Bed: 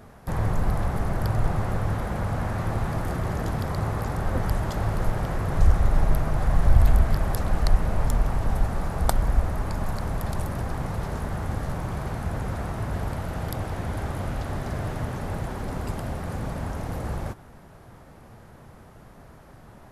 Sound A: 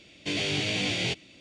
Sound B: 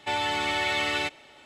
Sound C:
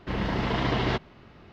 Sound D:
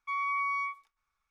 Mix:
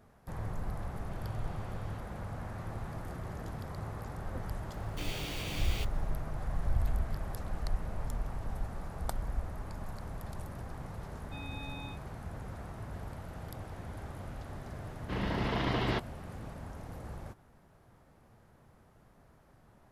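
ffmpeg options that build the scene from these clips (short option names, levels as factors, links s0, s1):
-filter_complex "[1:a]asplit=2[s0][s1];[0:a]volume=0.211[s2];[s0]acompressor=threshold=0.00631:ratio=6:attack=3.2:release=140:knee=1:detection=peak[s3];[s1]acrusher=bits=6:dc=4:mix=0:aa=0.000001[s4];[4:a]aeval=exprs='val(0)*sin(2*PI*1400*n/s)':c=same[s5];[s3]atrim=end=1.4,asetpts=PTS-STARTPTS,volume=0.133,afade=t=in:d=0.004:c=hsin,afade=t=out:st=1.396:d=0.004:c=hsin,adelay=860[s6];[s4]atrim=end=1.4,asetpts=PTS-STARTPTS,volume=0.224,afade=t=in:d=0.004:c=hsin,afade=t=out:st=1.396:d=0.004:c=hsin,adelay=4710[s7];[s5]atrim=end=1.3,asetpts=PTS-STARTPTS,volume=0.251,afade=t=in:d=0.004:c=hsin,afade=t=out:st=1.296:d=0.004:c=hsin,adelay=11240[s8];[3:a]atrim=end=1.52,asetpts=PTS-STARTPTS,volume=0.531,afade=t=in:d=0.004:c=hsin,afade=t=out:st=1.516:d=0.004:c=hsin,adelay=15020[s9];[s2][s6][s7][s8][s9]amix=inputs=5:normalize=0"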